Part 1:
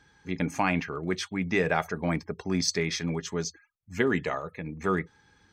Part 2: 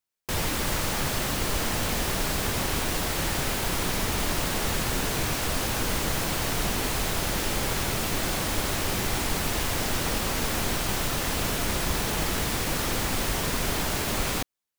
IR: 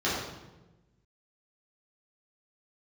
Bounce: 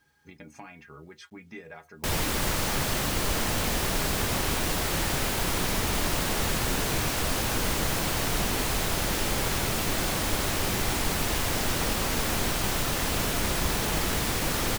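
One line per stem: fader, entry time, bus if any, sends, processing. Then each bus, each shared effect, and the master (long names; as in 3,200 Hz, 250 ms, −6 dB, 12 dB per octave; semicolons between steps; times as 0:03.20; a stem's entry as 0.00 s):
−1.0 dB, 0.00 s, no send, downward compressor 5 to 1, threshold −34 dBFS, peak gain reduction 13 dB; stiff-string resonator 72 Hz, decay 0.22 s, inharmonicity 0.008
0.0 dB, 1.75 s, no send, no processing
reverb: not used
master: bit reduction 12 bits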